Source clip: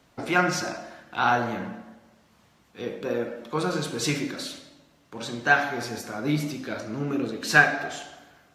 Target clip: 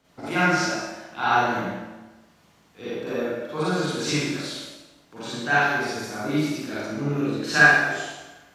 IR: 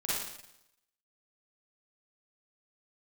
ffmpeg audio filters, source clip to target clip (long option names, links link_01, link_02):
-filter_complex "[1:a]atrim=start_sample=2205[link_01];[0:a][link_01]afir=irnorm=-1:irlink=0,acrossover=split=7800[link_02][link_03];[link_03]acompressor=threshold=-47dB:ratio=4:attack=1:release=60[link_04];[link_02][link_04]amix=inputs=2:normalize=0,volume=-3dB"